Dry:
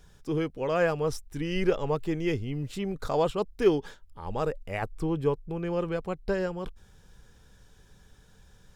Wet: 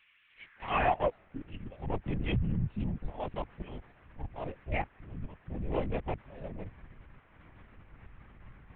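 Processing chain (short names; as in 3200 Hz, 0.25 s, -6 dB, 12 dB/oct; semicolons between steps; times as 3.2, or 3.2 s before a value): Wiener smoothing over 41 samples; auto swell 0.455 s; fixed phaser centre 1400 Hz, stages 6; band noise 210–2200 Hz -67 dBFS; high-pass sweep 2700 Hz -> 70 Hz, 0.3–2.11; LPC vocoder at 8 kHz whisper; gain +3.5 dB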